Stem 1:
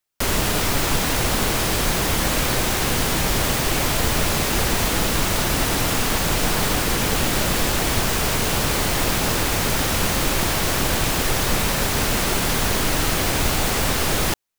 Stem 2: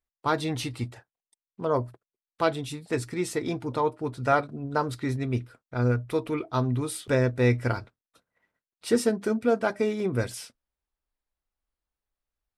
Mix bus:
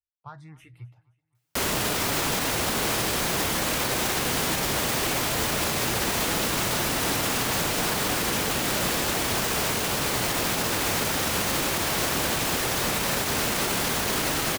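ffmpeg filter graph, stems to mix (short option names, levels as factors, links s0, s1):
-filter_complex "[0:a]highpass=f=160:p=1,adelay=1350,volume=1[s0];[1:a]equalizer=f=125:t=o:w=1:g=10,equalizer=f=250:t=o:w=1:g=-11,equalizer=f=500:t=o:w=1:g=-6,equalizer=f=2000:t=o:w=1:g=4,equalizer=f=4000:t=o:w=1:g=-9,equalizer=f=8000:t=o:w=1:g=-9,acompressor=threshold=0.0794:ratio=6,asplit=2[s1][s2];[s2]afreqshift=1.4[s3];[s1][s3]amix=inputs=2:normalize=1,volume=0.237,asplit=2[s4][s5];[s5]volume=0.0708,aecho=0:1:262|524|786|1048|1310|1572:1|0.41|0.168|0.0689|0.0283|0.0116[s6];[s0][s4][s6]amix=inputs=3:normalize=0,alimiter=limit=0.158:level=0:latency=1:release=48"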